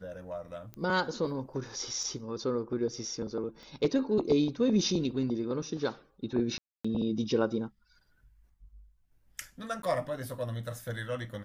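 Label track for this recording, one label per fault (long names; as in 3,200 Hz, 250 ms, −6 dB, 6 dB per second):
0.740000	0.740000	click −28 dBFS
2.030000	2.030000	drop-out 2.8 ms
3.630000	3.630000	click −35 dBFS
6.580000	6.840000	drop-out 265 ms
9.820000	9.830000	drop-out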